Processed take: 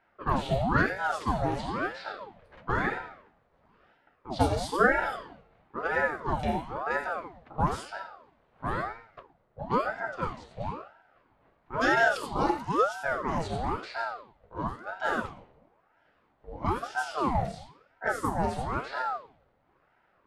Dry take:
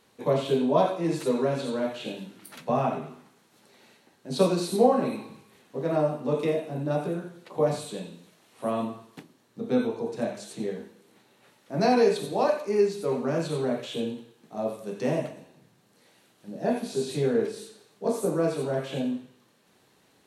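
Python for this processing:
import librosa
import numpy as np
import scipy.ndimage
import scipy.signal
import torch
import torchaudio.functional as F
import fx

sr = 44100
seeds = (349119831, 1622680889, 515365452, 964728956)

y = fx.env_lowpass(x, sr, base_hz=1200.0, full_db=-21.5)
y = fx.ring_lfo(y, sr, carrier_hz=700.0, swing_pct=65, hz=1.0)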